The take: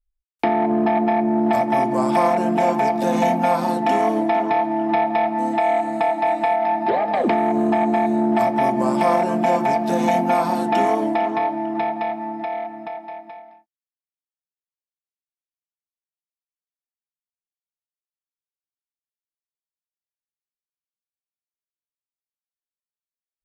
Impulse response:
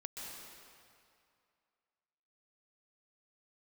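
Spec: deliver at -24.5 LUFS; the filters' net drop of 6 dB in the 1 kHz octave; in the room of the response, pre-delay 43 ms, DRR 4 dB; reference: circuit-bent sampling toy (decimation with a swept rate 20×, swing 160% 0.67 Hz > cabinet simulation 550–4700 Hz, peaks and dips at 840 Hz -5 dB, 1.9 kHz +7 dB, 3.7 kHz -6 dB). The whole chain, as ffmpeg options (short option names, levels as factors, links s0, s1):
-filter_complex "[0:a]equalizer=f=1000:t=o:g=-3,asplit=2[s0][s1];[1:a]atrim=start_sample=2205,adelay=43[s2];[s1][s2]afir=irnorm=-1:irlink=0,volume=0.75[s3];[s0][s3]amix=inputs=2:normalize=0,acrusher=samples=20:mix=1:aa=0.000001:lfo=1:lforange=32:lforate=0.67,highpass=550,equalizer=f=840:t=q:w=4:g=-5,equalizer=f=1900:t=q:w=4:g=7,equalizer=f=3700:t=q:w=4:g=-6,lowpass=f=4700:w=0.5412,lowpass=f=4700:w=1.3066,volume=0.75"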